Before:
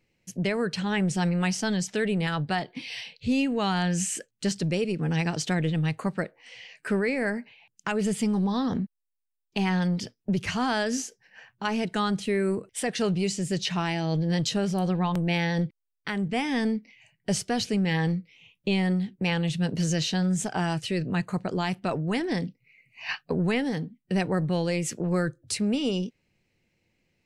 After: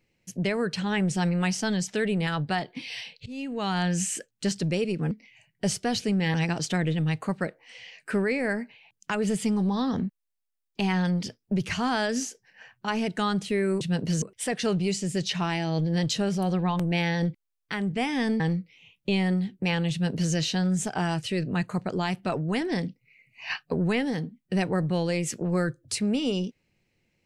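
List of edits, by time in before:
0:03.26–0:03.81: fade in, from −21.5 dB
0:16.76–0:17.99: move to 0:05.11
0:19.51–0:19.92: duplicate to 0:12.58

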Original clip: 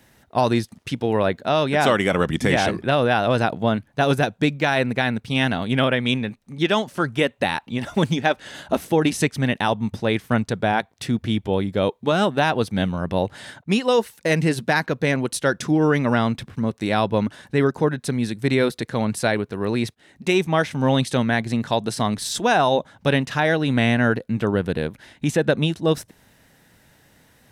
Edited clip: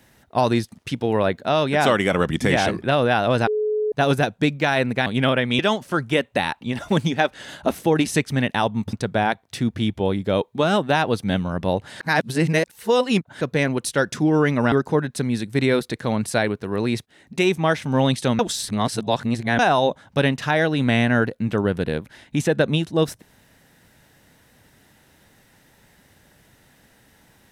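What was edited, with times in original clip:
0:03.47–0:03.92: beep over 426 Hz −19 dBFS
0:05.06–0:05.61: remove
0:06.14–0:06.65: remove
0:09.99–0:10.41: remove
0:13.48–0:14.89: reverse
0:16.20–0:17.61: remove
0:21.28–0:22.48: reverse

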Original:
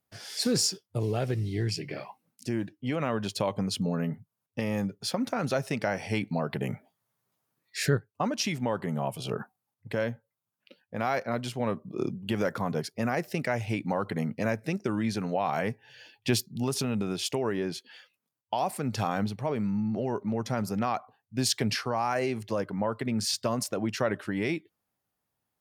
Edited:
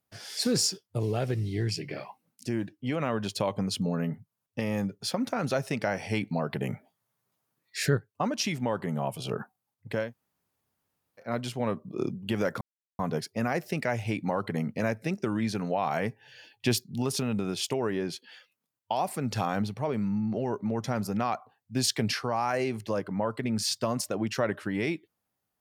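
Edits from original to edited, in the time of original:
0:10.06–0:11.25: fill with room tone, crossfade 0.16 s
0:12.61: splice in silence 0.38 s

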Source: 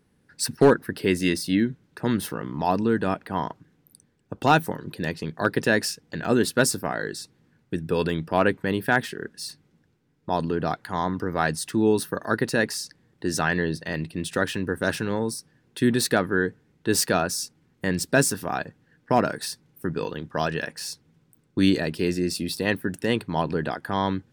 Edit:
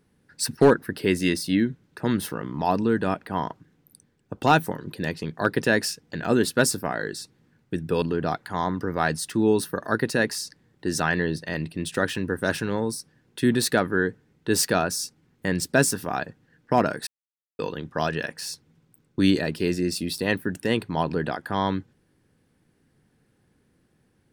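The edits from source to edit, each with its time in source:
0:08.02–0:10.41: remove
0:19.46–0:19.98: silence

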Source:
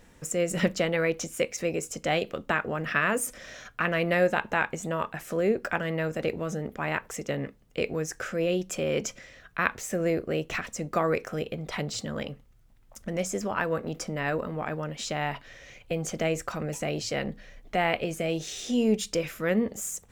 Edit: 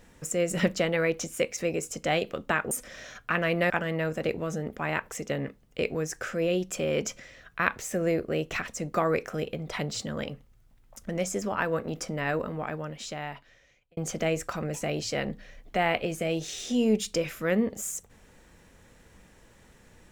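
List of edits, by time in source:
0:02.71–0:03.21: remove
0:04.20–0:05.69: remove
0:14.43–0:15.96: fade out

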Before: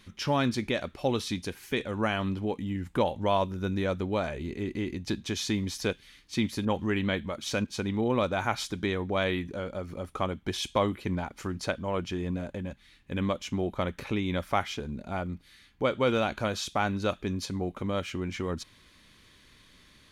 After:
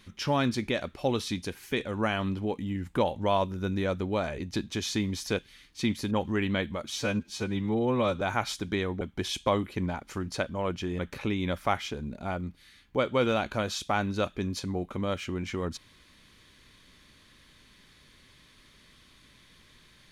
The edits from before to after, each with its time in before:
0:04.39–0:04.93: remove
0:07.46–0:08.32: time-stretch 1.5×
0:09.12–0:10.30: remove
0:12.28–0:13.85: remove

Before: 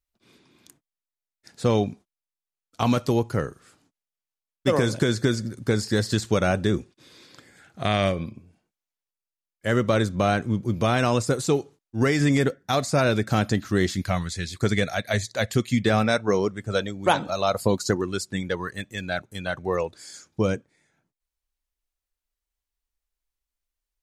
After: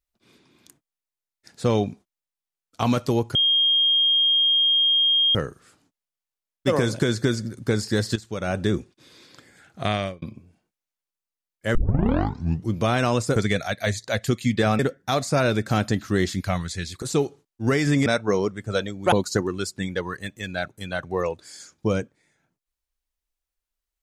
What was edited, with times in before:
0:03.35: insert tone 3,230 Hz −16 dBFS 2.00 s
0:06.16–0:06.62: fade in quadratic, from −13 dB
0:07.87–0:08.22: fade out
0:09.75: tape start 0.98 s
0:11.36–0:12.40: swap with 0:14.63–0:16.06
0:17.12–0:17.66: remove

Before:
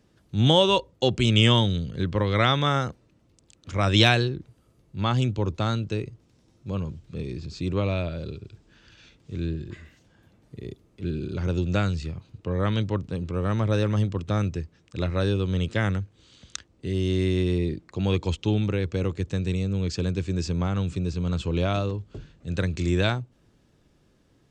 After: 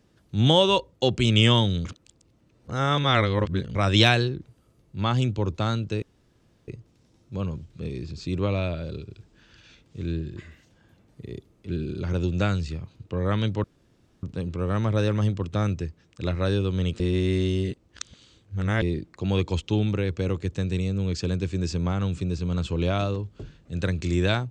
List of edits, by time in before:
0:01.85–0:03.75: reverse
0:06.02: splice in room tone 0.66 s
0:12.98: splice in room tone 0.59 s
0:15.75–0:17.57: reverse

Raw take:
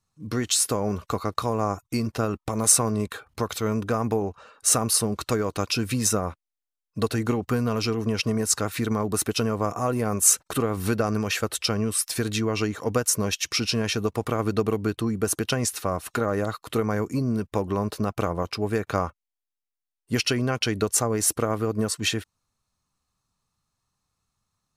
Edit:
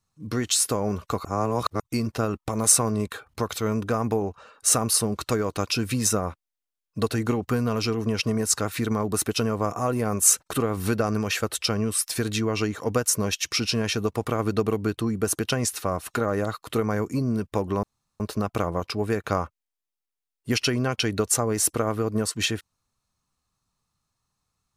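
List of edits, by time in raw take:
0:01.25–0:01.80: reverse
0:17.83: splice in room tone 0.37 s

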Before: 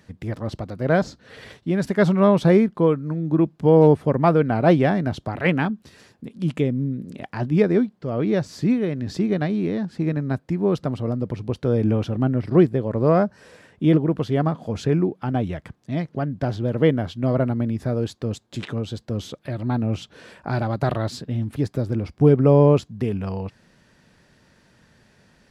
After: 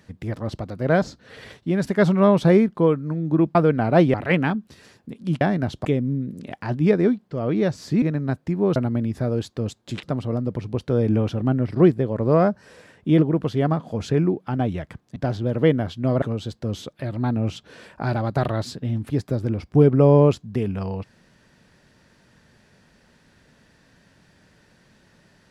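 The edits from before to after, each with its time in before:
0:03.55–0:04.26: remove
0:04.85–0:05.29: move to 0:06.56
0:08.73–0:10.04: remove
0:15.91–0:16.35: remove
0:17.41–0:18.68: move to 0:10.78

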